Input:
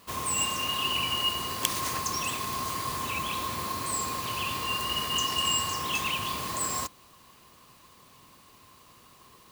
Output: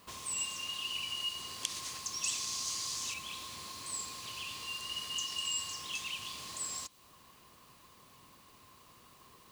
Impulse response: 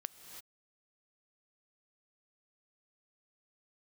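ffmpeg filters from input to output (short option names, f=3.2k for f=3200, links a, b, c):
-filter_complex "[0:a]acrossover=split=9100[a][b];[b]acompressor=threshold=-54dB:ratio=4:attack=1:release=60[c];[a][c]amix=inputs=2:normalize=0,asettb=1/sr,asplit=3[d][e][f];[d]atrim=end=2.234[g];[e]atrim=start=2.23:end=3.14,asetpts=PTS-STARTPTS,afade=t=in:d=0.004:c=qsin,afade=t=out:st=0.906:d=0.004:c=qsin,equalizer=f=6.1k:w=1.1:g=12[h];[f]atrim=start=3.136[i];[g][h]acrossfade=d=0.004:c1=hsin:c2=qsin[j];[j][i]acrossfade=d=0.004:c1=qsin:c2=hsin,acrossover=split=2800[k][l];[k]acompressor=threshold=-44dB:ratio=12[m];[m][l]amix=inputs=2:normalize=0,volume=-4dB"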